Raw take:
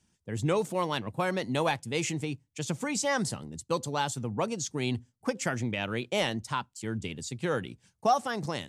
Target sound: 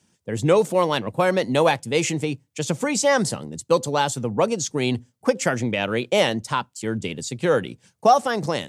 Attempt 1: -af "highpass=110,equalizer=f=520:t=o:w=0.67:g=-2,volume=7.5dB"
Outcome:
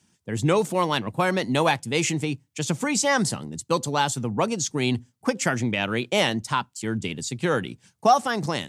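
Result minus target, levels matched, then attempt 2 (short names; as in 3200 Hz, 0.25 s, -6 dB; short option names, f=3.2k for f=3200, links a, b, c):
500 Hz band -3.0 dB
-af "highpass=110,equalizer=f=520:t=o:w=0.67:g=5,volume=7.5dB"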